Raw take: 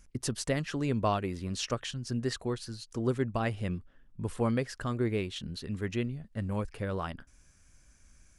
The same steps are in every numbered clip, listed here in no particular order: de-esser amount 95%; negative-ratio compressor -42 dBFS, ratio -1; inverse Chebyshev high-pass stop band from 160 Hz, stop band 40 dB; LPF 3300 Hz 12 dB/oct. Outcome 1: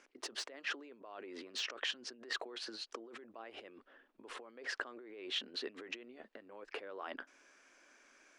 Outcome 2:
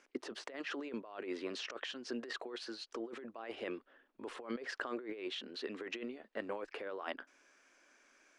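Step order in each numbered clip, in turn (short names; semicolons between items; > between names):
LPF > negative-ratio compressor > inverse Chebyshev high-pass > de-esser; inverse Chebyshev high-pass > de-esser > negative-ratio compressor > LPF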